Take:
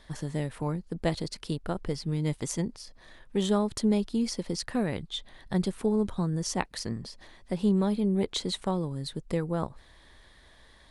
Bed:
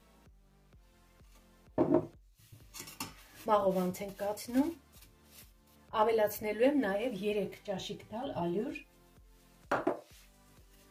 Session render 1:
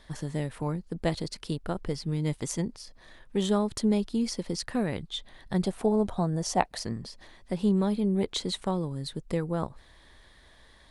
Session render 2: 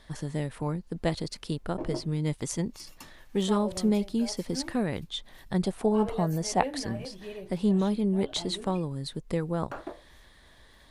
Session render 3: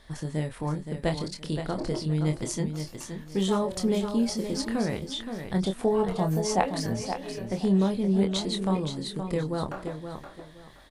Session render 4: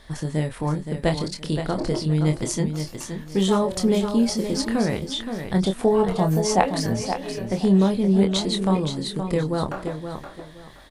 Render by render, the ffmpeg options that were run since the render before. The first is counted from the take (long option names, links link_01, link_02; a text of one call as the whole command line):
ffmpeg -i in.wav -filter_complex "[0:a]asettb=1/sr,asplit=3[link_01][link_02][link_03];[link_01]atrim=end=5.644[link_04];[link_02]atrim=start=5.64:end=6.85,asetpts=PTS-STARTPTS,afade=type=in:duration=0.004:curve=qsin,afade=type=out:start_time=1.206:duration=0.004:curve=qsin,equalizer=frequency=700:width=2.4:gain=12[link_05];[link_03]atrim=start=6.846[link_06];[link_04][link_05]acrossfade=duration=0.004:curve1=hsin:curve2=qsin[link_07];[link_07][link_06]acrossfade=duration=0.004:curve1=qsin:curve2=hsin" out.wav
ffmpeg -i in.wav -i bed.wav -filter_complex "[1:a]volume=-7.5dB[link_01];[0:a][link_01]amix=inputs=2:normalize=0" out.wav
ffmpeg -i in.wav -filter_complex "[0:a]asplit=2[link_01][link_02];[link_02]adelay=26,volume=-6.5dB[link_03];[link_01][link_03]amix=inputs=2:normalize=0,asplit=2[link_04][link_05];[link_05]aecho=0:1:521|1042|1563:0.398|0.0995|0.0249[link_06];[link_04][link_06]amix=inputs=2:normalize=0" out.wav
ffmpeg -i in.wav -af "volume=5.5dB" out.wav